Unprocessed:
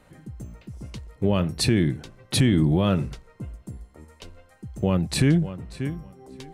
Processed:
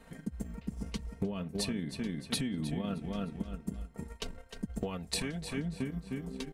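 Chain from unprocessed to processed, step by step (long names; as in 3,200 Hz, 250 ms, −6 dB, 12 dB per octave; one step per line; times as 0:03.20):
comb filter 4.4 ms, depth 74%
on a send: repeating echo 306 ms, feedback 26%, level −7.5 dB
on the sum: transient designer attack +7 dB, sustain −7 dB
0:04.83–0:05.58: parametric band 190 Hz −11 dB 2.1 octaves
downward compressor 10 to 1, threshold −29 dBFS, peak gain reduction 18.5 dB
level −2.5 dB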